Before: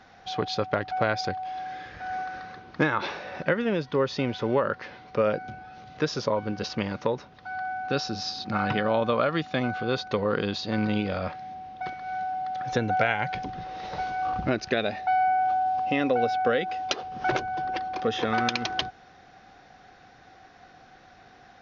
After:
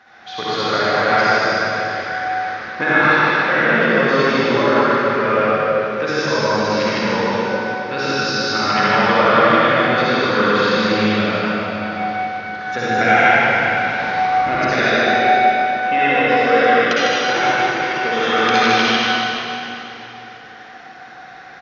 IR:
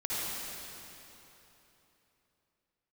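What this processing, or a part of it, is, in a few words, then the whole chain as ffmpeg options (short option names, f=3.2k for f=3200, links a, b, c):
stadium PA: -filter_complex "[0:a]highpass=f=220:p=1,equalizer=f=1.7k:t=o:w=1.6:g=8,aecho=1:1:151.6|262.4:0.794|0.316[a];[1:a]atrim=start_sample=2205[b];[a][b]afir=irnorm=-1:irlink=0,volume=1dB"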